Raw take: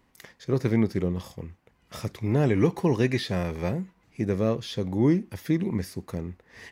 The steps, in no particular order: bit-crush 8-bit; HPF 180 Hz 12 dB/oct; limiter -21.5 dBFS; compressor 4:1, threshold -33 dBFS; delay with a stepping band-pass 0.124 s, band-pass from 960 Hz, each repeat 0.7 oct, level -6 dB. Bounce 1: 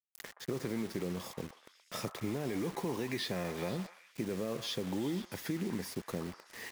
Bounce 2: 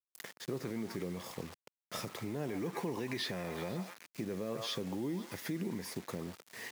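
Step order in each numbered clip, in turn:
HPF > limiter > compressor > bit-crush > delay with a stepping band-pass; delay with a stepping band-pass > limiter > bit-crush > compressor > HPF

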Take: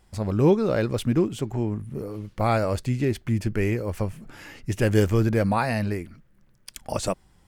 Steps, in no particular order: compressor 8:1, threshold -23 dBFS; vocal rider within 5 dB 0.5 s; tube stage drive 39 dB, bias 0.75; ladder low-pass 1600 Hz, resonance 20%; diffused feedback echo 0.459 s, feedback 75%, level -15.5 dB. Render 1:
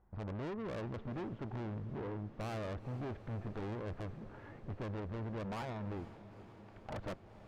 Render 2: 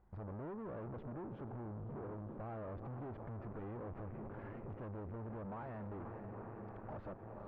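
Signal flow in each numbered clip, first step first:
ladder low-pass > compressor > vocal rider > tube stage > diffused feedback echo; vocal rider > diffused feedback echo > compressor > tube stage > ladder low-pass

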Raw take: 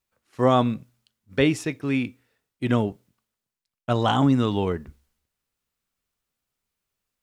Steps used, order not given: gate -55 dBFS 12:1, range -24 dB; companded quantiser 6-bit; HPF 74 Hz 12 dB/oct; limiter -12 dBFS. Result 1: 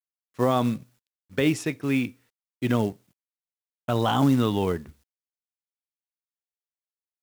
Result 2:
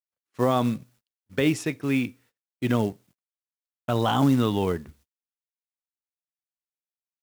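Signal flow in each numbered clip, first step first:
limiter > HPF > gate > companded quantiser; limiter > HPF > companded quantiser > gate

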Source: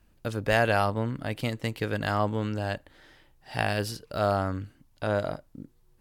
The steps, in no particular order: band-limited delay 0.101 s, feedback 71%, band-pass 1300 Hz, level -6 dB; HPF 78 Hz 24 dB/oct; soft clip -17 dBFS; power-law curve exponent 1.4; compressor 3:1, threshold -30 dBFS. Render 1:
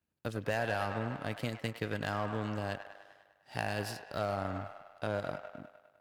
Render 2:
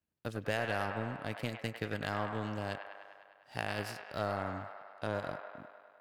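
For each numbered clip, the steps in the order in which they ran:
HPF > soft clip > band-limited delay > power-law curve > compressor; HPF > power-law curve > compressor > band-limited delay > soft clip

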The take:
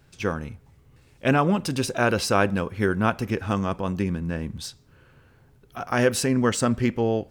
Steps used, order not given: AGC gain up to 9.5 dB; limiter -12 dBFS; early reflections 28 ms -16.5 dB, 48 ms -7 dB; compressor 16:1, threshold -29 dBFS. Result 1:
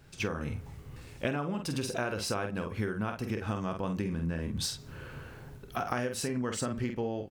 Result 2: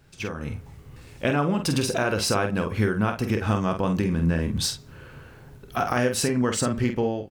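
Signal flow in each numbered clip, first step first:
early reflections > AGC > compressor > limiter; compressor > AGC > limiter > early reflections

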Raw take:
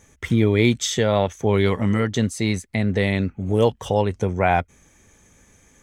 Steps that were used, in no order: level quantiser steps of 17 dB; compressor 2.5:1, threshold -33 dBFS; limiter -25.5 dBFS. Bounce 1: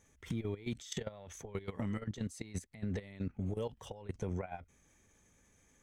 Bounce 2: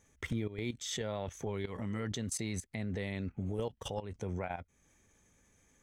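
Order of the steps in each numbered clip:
limiter > level quantiser > compressor; level quantiser > compressor > limiter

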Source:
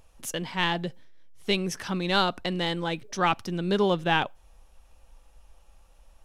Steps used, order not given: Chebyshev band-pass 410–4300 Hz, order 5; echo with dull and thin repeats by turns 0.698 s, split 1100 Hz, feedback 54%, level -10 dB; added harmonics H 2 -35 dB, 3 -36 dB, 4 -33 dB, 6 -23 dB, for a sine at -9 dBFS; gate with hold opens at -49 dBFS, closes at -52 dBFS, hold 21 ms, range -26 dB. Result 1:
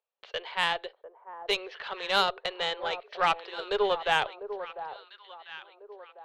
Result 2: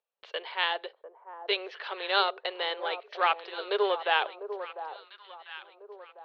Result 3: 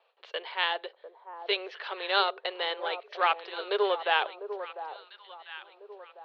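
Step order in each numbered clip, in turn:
Chebyshev band-pass > gate with hold > echo with dull and thin repeats by turns > added harmonics; added harmonics > Chebyshev band-pass > gate with hold > echo with dull and thin repeats by turns; echo with dull and thin repeats by turns > gate with hold > added harmonics > Chebyshev band-pass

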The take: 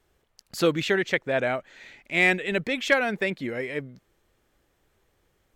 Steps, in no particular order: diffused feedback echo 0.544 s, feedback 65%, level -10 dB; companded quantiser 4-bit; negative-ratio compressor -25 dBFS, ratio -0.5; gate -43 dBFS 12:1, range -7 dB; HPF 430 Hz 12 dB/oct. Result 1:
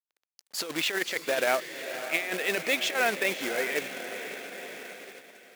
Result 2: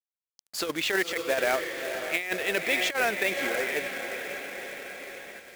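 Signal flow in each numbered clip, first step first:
negative-ratio compressor > diffused feedback echo > companded quantiser > HPF > gate; diffused feedback echo > gate > HPF > companded quantiser > negative-ratio compressor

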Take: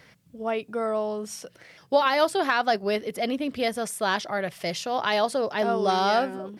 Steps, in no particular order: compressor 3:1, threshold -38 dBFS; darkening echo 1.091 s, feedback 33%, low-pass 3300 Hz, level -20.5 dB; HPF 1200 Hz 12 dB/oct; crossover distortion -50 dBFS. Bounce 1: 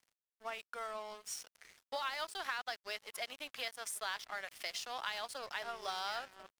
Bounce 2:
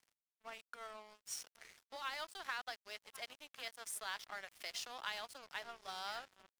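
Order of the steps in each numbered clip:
HPF > compressor > darkening echo > crossover distortion; darkening echo > compressor > HPF > crossover distortion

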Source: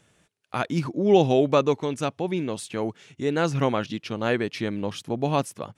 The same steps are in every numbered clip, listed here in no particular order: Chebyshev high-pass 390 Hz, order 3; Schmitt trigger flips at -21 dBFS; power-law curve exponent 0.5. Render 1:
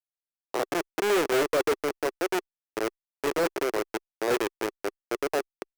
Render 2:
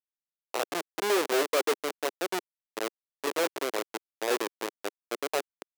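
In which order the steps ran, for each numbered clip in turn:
Schmitt trigger > Chebyshev high-pass > power-law curve; Schmitt trigger > power-law curve > Chebyshev high-pass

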